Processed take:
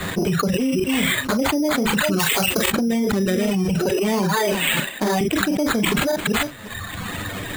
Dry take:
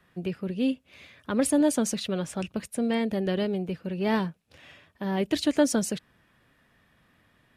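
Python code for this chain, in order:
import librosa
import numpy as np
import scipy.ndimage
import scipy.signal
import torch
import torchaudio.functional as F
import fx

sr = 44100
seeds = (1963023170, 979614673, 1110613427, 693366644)

p1 = fx.reverse_delay(x, sr, ms=266, wet_db=-10.0)
p2 = fx.rider(p1, sr, range_db=4, speed_s=2.0)
p3 = p1 + F.gain(torch.from_numpy(p2), -1.0).numpy()
p4 = fx.highpass(p3, sr, hz=190.0, slope=24, at=(3.91, 5.21))
p5 = p4 + 10.0 ** (-23.5 / 20.0) * np.pad(p4, (int(352 * sr / 1000.0), 0))[:len(p4)]
p6 = fx.env_flanger(p5, sr, rest_ms=10.8, full_db=-15.0)
p7 = np.repeat(p6[::8], 8)[:len(p6)]
p8 = fx.tilt_eq(p7, sr, slope=2.0, at=(2.18, 2.67), fade=0.02)
p9 = fx.dereverb_blind(p8, sr, rt60_s=1.2)
p10 = p9 + fx.room_early_taps(p9, sr, ms=(30, 43), db=(-13.0, -12.0), dry=0)
p11 = fx.env_flatten(p10, sr, amount_pct=100)
y = F.gain(torch.from_numpy(p11), -7.0).numpy()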